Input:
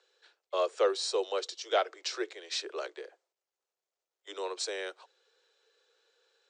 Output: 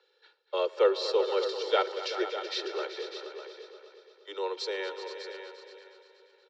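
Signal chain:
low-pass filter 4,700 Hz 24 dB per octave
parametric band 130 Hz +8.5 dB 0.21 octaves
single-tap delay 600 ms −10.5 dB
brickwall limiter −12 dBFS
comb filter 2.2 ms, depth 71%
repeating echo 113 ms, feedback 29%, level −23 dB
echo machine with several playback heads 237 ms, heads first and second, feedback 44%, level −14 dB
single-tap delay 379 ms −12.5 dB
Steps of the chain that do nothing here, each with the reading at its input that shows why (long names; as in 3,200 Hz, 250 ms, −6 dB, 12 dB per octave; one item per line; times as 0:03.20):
parametric band 130 Hz: nothing at its input below 270 Hz
brickwall limiter −12 dBFS: peak of its input −16.5 dBFS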